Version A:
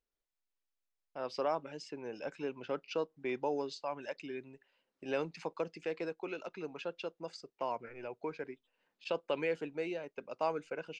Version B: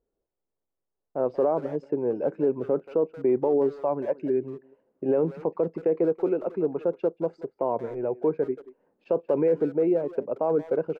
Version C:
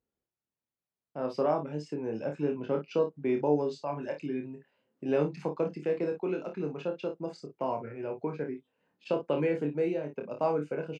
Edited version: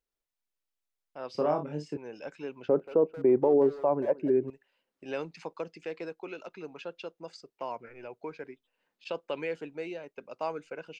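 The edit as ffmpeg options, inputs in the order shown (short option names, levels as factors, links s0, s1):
-filter_complex "[0:a]asplit=3[s0][s1][s2];[s0]atrim=end=1.352[s3];[2:a]atrim=start=1.348:end=1.972[s4];[s1]atrim=start=1.968:end=2.692[s5];[1:a]atrim=start=2.688:end=4.502[s6];[s2]atrim=start=4.498[s7];[s3][s4]acrossfade=d=0.004:c1=hsin:c2=hsin[s8];[s8][s5]acrossfade=d=0.004:c1=hsin:c2=hsin[s9];[s9][s6]acrossfade=d=0.004:c1=hsin:c2=hsin[s10];[s10][s7]acrossfade=d=0.004:c1=hsin:c2=hsin"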